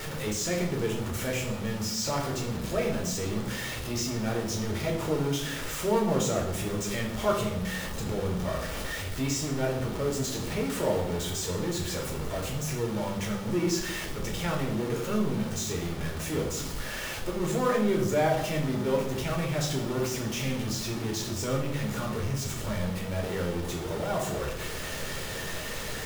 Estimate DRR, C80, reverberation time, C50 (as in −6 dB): −1.0 dB, 9.5 dB, 0.85 s, 6.0 dB